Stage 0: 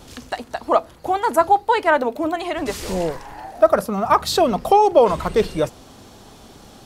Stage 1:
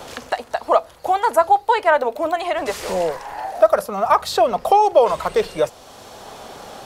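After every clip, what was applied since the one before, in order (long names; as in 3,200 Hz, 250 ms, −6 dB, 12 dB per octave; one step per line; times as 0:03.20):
low shelf with overshoot 400 Hz −8 dB, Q 1.5
multiband upward and downward compressor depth 40%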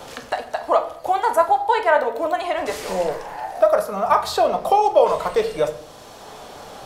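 rectangular room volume 120 cubic metres, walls mixed, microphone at 0.4 metres
level −2.5 dB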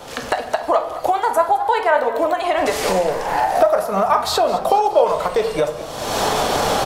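camcorder AGC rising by 40 dB per second
echo with shifted repeats 212 ms, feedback 58%, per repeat +55 Hz, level −16.5 dB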